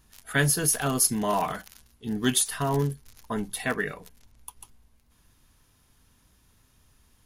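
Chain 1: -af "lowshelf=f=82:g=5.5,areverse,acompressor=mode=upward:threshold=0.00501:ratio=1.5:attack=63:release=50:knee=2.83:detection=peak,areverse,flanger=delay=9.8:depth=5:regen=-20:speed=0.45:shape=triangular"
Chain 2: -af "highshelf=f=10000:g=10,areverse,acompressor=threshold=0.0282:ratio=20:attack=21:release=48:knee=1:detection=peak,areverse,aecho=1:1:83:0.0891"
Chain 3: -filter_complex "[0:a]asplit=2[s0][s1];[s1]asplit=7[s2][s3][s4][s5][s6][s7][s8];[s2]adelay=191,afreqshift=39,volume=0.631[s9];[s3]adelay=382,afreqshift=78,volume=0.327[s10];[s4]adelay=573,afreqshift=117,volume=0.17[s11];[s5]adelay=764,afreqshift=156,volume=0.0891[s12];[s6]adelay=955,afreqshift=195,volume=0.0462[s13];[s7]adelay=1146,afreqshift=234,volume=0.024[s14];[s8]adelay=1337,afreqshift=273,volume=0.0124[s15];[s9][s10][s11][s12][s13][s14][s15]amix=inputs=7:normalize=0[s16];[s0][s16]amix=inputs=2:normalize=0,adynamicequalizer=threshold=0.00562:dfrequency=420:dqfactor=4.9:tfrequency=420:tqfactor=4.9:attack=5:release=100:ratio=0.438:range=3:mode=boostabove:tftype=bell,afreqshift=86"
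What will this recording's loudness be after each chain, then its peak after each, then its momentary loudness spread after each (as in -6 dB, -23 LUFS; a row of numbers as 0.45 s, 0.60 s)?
-29.0 LUFS, -32.0 LUFS, -24.0 LUFS; -12.5 dBFS, -16.0 dBFS, -8.5 dBFS; 18 LU, 14 LU, 13 LU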